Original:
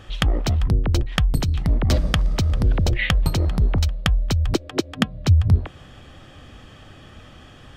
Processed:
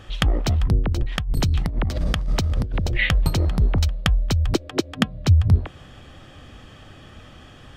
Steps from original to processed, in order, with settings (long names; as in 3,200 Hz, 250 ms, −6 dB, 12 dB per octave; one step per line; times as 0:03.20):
0:00.88–0:03.11: compressor whose output falls as the input rises −20 dBFS, ratio −0.5